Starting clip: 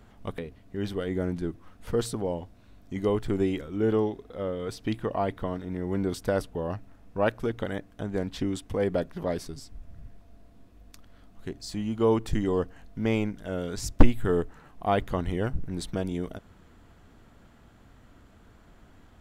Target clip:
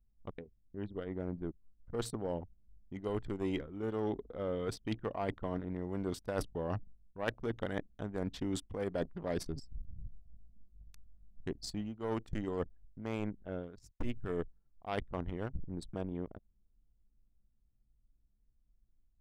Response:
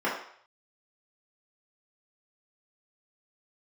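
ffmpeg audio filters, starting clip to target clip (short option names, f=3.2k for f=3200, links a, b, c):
-af "aeval=exprs='0.75*(cos(1*acos(clip(val(0)/0.75,-1,1)))-cos(1*PI/2))+0.0119*(cos(5*acos(clip(val(0)/0.75,-1,1)))-cos(5*PI/2))+0.0841*(cos(7*acos(clip(val(0)/0.75,-1,1)))-cos(7*PI/2))':c=same,dynaudnorm=f=820:g=7:m=14dB,anlmdn=0.251,areverse,acompressor=threshold=-32dB:ratio=12,areverse"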